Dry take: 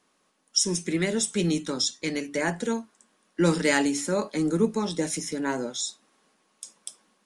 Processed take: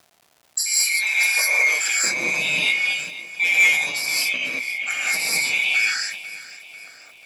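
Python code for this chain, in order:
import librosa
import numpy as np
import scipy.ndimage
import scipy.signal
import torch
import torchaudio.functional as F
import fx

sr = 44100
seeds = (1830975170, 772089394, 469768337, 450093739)

y = fx.band_swap(x, sr, width_hz=2000)
y = fx.filter_sweep_highpass(y, sr, from_hz=3200.0, to_hz=150.0, start_s=0.65, end_s=1.94, q=0.77)
y = fx.over_compress(y, sr, threshold_db=-29.0, ratio=-0.5, at=(3.64, 5.76), fade=0.02)
y = fx.env_lowpass(y, sr, base_hz=380.0, full_db=-23.5)
y = fx.echo_feedback(y, sr, ms=492, feedback_pct=52, wet_db=-17)
y = fx.rev_gated(y, sr, seeds[0], gate_ms=240, shape='rising', drr_db=-7.0)
y = 10.0 ** (-10.0 / 20.0) * np.tanh(y / 10.0 ** (-10.0 / 20.0))
y = fx.low_shelf(y, sr, hz=220.0, db=-8.5)
y = fx.dmg_crackle(y, sr, seeds[1], per_s=370.0, level_db=-44.0)
y = scipy.signal.sosfilt(scipy.signal.butter(2, 67.0, 'highpass', fs=sr, output='sos'), y)
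y = fx.peak_eq(y, sr, hz=680.0, db=9.0, octaves=0.52)
y = fx.sustainer(y, sr, db_per_s=62.0)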